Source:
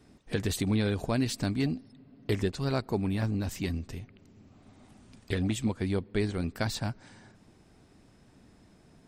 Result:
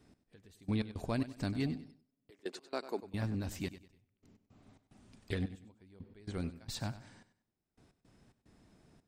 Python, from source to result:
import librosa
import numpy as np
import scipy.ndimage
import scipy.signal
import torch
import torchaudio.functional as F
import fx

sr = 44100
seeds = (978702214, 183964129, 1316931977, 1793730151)

p1 = fx.highpass(x, sr, hz=290.0, slope=24, at=(2.3, 3.03))
p2 = fx.step_gate(p1, sr, bpm=110, pattern='x....x.xx.xxx', floor_db=-24.0, edge_ms=4.5)
p3 = p2 + fx.echo_feedback(p2, sr, ms=97, feedback_pct=30, wet_db=-14, dry=0)
y = p3 * 10.0 ** (-6.0 / 20.0)